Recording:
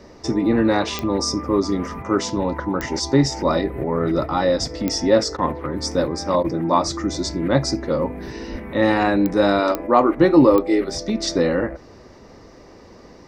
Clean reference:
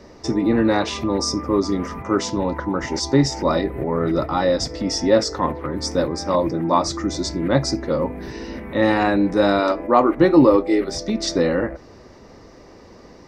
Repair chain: de-click; de-plosive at 8.51 s; interpolate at 5.37/6.43 s, 12 ms

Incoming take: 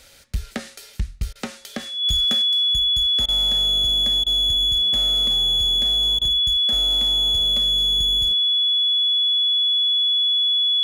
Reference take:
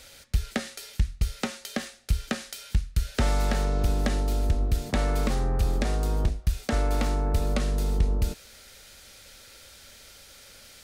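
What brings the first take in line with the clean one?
clip repair -16 dBFS; band-stop 3.4 kHz, Q 30; interpolate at 1.33/3.26/4.24/6.19 s, 23 ms; gain correction +7.5 dB, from 2.42 s

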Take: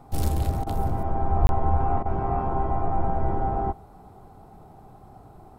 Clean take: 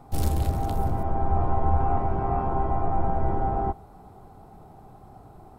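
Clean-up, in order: de-plosive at 1.41 s; interpolate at 1.47 s, 21 ms; interpolate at 0.64/2.03 s, 25 ms

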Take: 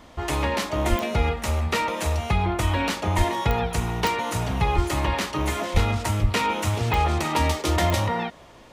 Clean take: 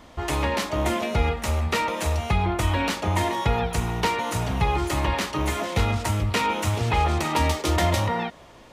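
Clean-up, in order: de-click; de-plosive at 0.89/3.17/4.75/5.73/6.21 s

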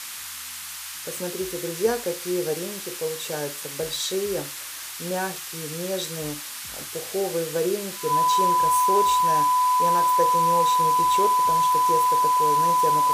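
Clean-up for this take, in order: band-stop 1 kHz, Q 30; noise print and reduce 30 dB

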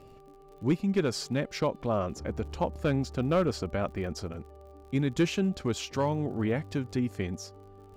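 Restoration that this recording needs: clip repair -17.5 dBFS; de-click; de-hum 392.2 Hz, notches 3

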